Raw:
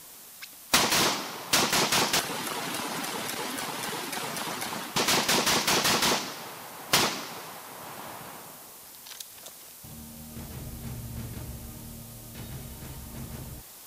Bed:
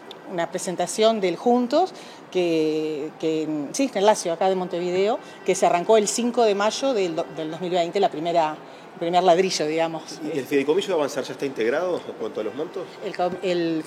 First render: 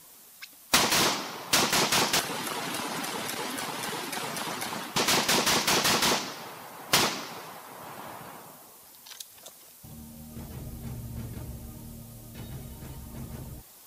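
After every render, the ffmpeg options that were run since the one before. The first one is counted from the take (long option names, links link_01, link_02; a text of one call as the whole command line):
ffmpeg -i in.wav -af "afftdn=noise_reduction=6:noise_floor=-48" out.wav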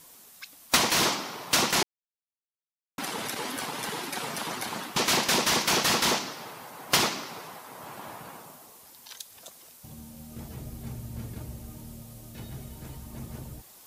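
ffmpeg -i in.wav -filter_complex "[0:a]asplit=3[link_01][link_02][link_03];[link_01]atrim=end=1.83,asetpts=PTS-STARTPTS,afade=type=out:start_time=1.826:duration=0.004:curve=hsin[link_04];[link_02]atrim=start=1.83:end=2.98,asetpts=PTS-STARTPTS,volume=0[link_05];[link_03]atrim=start=2.98,asetpts=PTS-STARTPTS,afade=type=in:duration=0.004:curve=hsin[link_06];[link_04][link_05][link_06]concat=n=3:v=0:a=1" out.wav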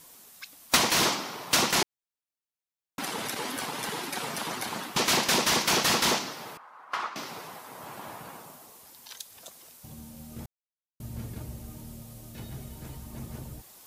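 ffmpeg -i in.wav -filter_complex "[0:a]asettb=1/sr,asplit=3[link_01][link_02][link_03];[link_01]atrim=end=6.574[link_04];[link_02]atrim=start=6.57:end=7.16,asetpts=PTS-STARTPTS,afade=type=in:duration=0.004:curve=qsin,afade=type=out:start_time=0.586:duration=0.004:curve=qsin,bandpass=frequency=1200:width_type=q:width=2.7[link_05];[link_03]atrim=start=7.156[link_06];[link_04][link_05]acrossfade=duration=0.004:curve1=hsin:curve2=qsin[link_07];[link_07][link_06]acrossfade=duration=0.004:curve1=qsin:curve2=hsin,asplit=3[link_08][link_09][link_10];[link_08]atrim=end=10.46,asetpts=PTS-STARTPTS,afade=type=out:start_time=10.456:duration=0.004:curve=hsin[link_11];[link_09]atrim=start=10.46:end=11,asetpts=PTS-STARTPTS,volume=0[link_12];[link_10]atrim=start=11,asetpts=PTS-STARTPTS,afade=type=in:duration=0.004:curve=hsin[link_13];[link_11][link_12][link_13]concat=n=3:v=0:a=1" out.wav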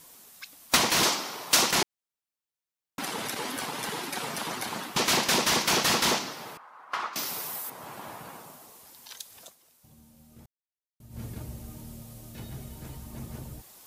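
ffmpeg -i in.wav -filter_complex "[0:a]asettb=1/sr,asplit=3[link_01][link_02][link_03];[link_01]atrim=end=1.034[link_04];[link_02]atrim=start=1.03:end=1.71,asetpts=PTS-STARTPTS,afade=type=in:duration=0.004:curve=qsin,afade=type=out:start_time=0.676:duration=0.004:curve=qsin,bass=frequency=250:gain=-6,treble=frequency=4000:gain=4[link_05];[link_03]atrim=start=1.706[link_06];[link_04][link_05]acrossfade=duration=0.004:curve1=hsin:curve2=qsin[link_07];[link_07][link_06]acrossfade=duration=0.004:curve1=qsin:curve2=hsin,asettb=1/sr,asplit=3[link_08][link_09][link_10];[link_08]atrim=end=7.134[link_11];[link_09]atrim=start=7.13:end=7.7,asetpts=PTS-STARTPTS,afade=type=in:duration=0.004:curve=qsin,afade=type=out:start_time=0.566:duration=0.004:curve=qsin,aemphasis=mode=production:type=75fm[link_12];[link_10]atrim=start=7.696[link_13];[link_11][link_12]acrossfade=duration=0.004:curve1=hsin:curve2=qsin[link_14];[link_14][link_13]acrossfade=duration=0.004:curve1=qsin:curve2=hsin,asplit=3[link_15][link_16][link_17];[link_15]atrim=end=9.56,asetpts=PTS-STARTPTS,afade=type=out:start_time=9.42:duration=0.14:silence=0.281838[link_18];[link_16]atrim=start=9.56:end=11.09,asetpts=PTS-STARTPTS,volume=-11dB[link_19];[link_17]atrim=start=11.09,asetpts=PTS-STARTPTS,afade=type=in:duration=0.14:silence=0.281838[link_20];[link_18][link_19][link_20]concat=n=3:v=0:a=1" out.wav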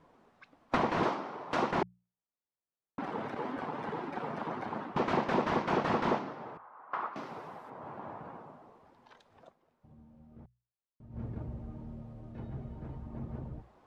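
ffmpeg -i in.wav -af "lowpass=1100,bandreject=frequency=60:width_type=h:width=6,bandreject=frequency=120:width_type=h:width=6,bandreject=frequency=180:width_type=h:width=6" out.wav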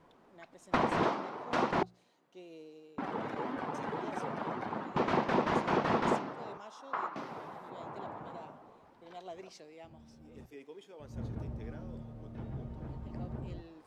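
ffmpeg -i in.wav -i bed.wav -filter_complex "[1:a]volume=-29.5dB[link_01];[0:a][link_01]amix=inputs=2:normalize=0" out.wav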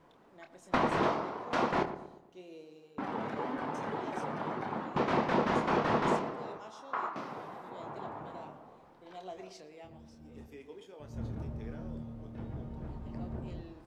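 ffmpeg -i in.wav -filter_complex "[0:a]asplit=2[link_01][link_02];[link_02]adelay=27,volume=-8dB[link_03];[link_01][link_03]amix=inputs=2:normalize=0,asplit=2[link_04][link_05];[link_05]adelay=117,lowpass=frequency=1300:poles=1,volume=-10dB,asplit=2[link_06][link_07];[link_07]adelay=117,lowpass=frequency=1300:poles=1,volume=0.49,asplit=2[link_08][link_09];[link_09]adelay=117,lowpass=frequency=1300:poles=1,volume=0.49,asplit=2[link_10][link_11];[link_11]adelay=117,lowpass=frequency=1300:poles=1,volume=0.49,asplit=2[link_12][link_13];[link_13]adelay=117,lowpass=frequency=1300:poles=1,volume=0.49[link_14];[link_04][link_06][link_08][link_10][link_12][link_14]amix=inputs=6:normalize=0" out.wav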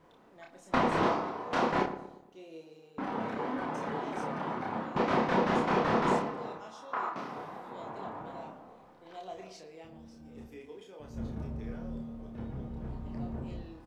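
ffmpeg -i in.wav -filter_complex "[0:a]asplit=2[link_01][link_02];[link_02]adelay=31,volume=-4dB[link_03];[link_01][link_03]amix=inputs=2:normalize=0" out.wav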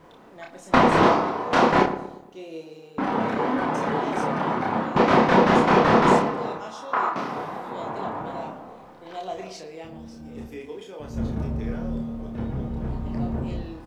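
ffmpeg -i in.wav -af "volume=10.5dB" out.wav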